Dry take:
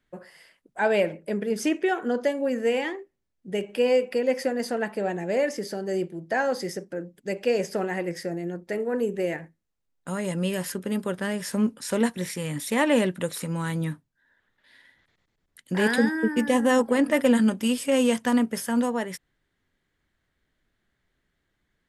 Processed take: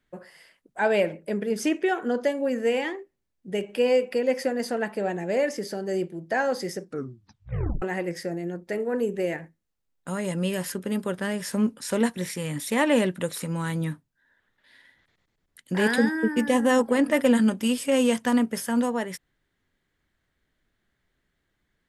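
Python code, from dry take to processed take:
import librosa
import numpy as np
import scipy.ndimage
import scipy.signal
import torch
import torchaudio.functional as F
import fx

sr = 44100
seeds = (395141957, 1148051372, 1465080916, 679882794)

y = fx.edit(x, sr, fx.tape_stop(start_s=6.82, length_s=1.0), tone=tone)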